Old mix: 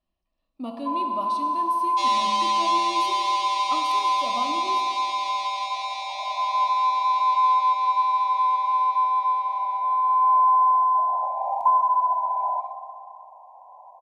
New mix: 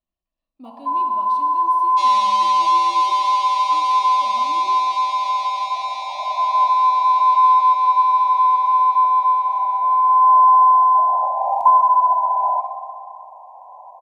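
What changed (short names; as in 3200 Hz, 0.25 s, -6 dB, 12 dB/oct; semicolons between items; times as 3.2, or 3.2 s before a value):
speech -7.5 dB; first sound +6.5 dB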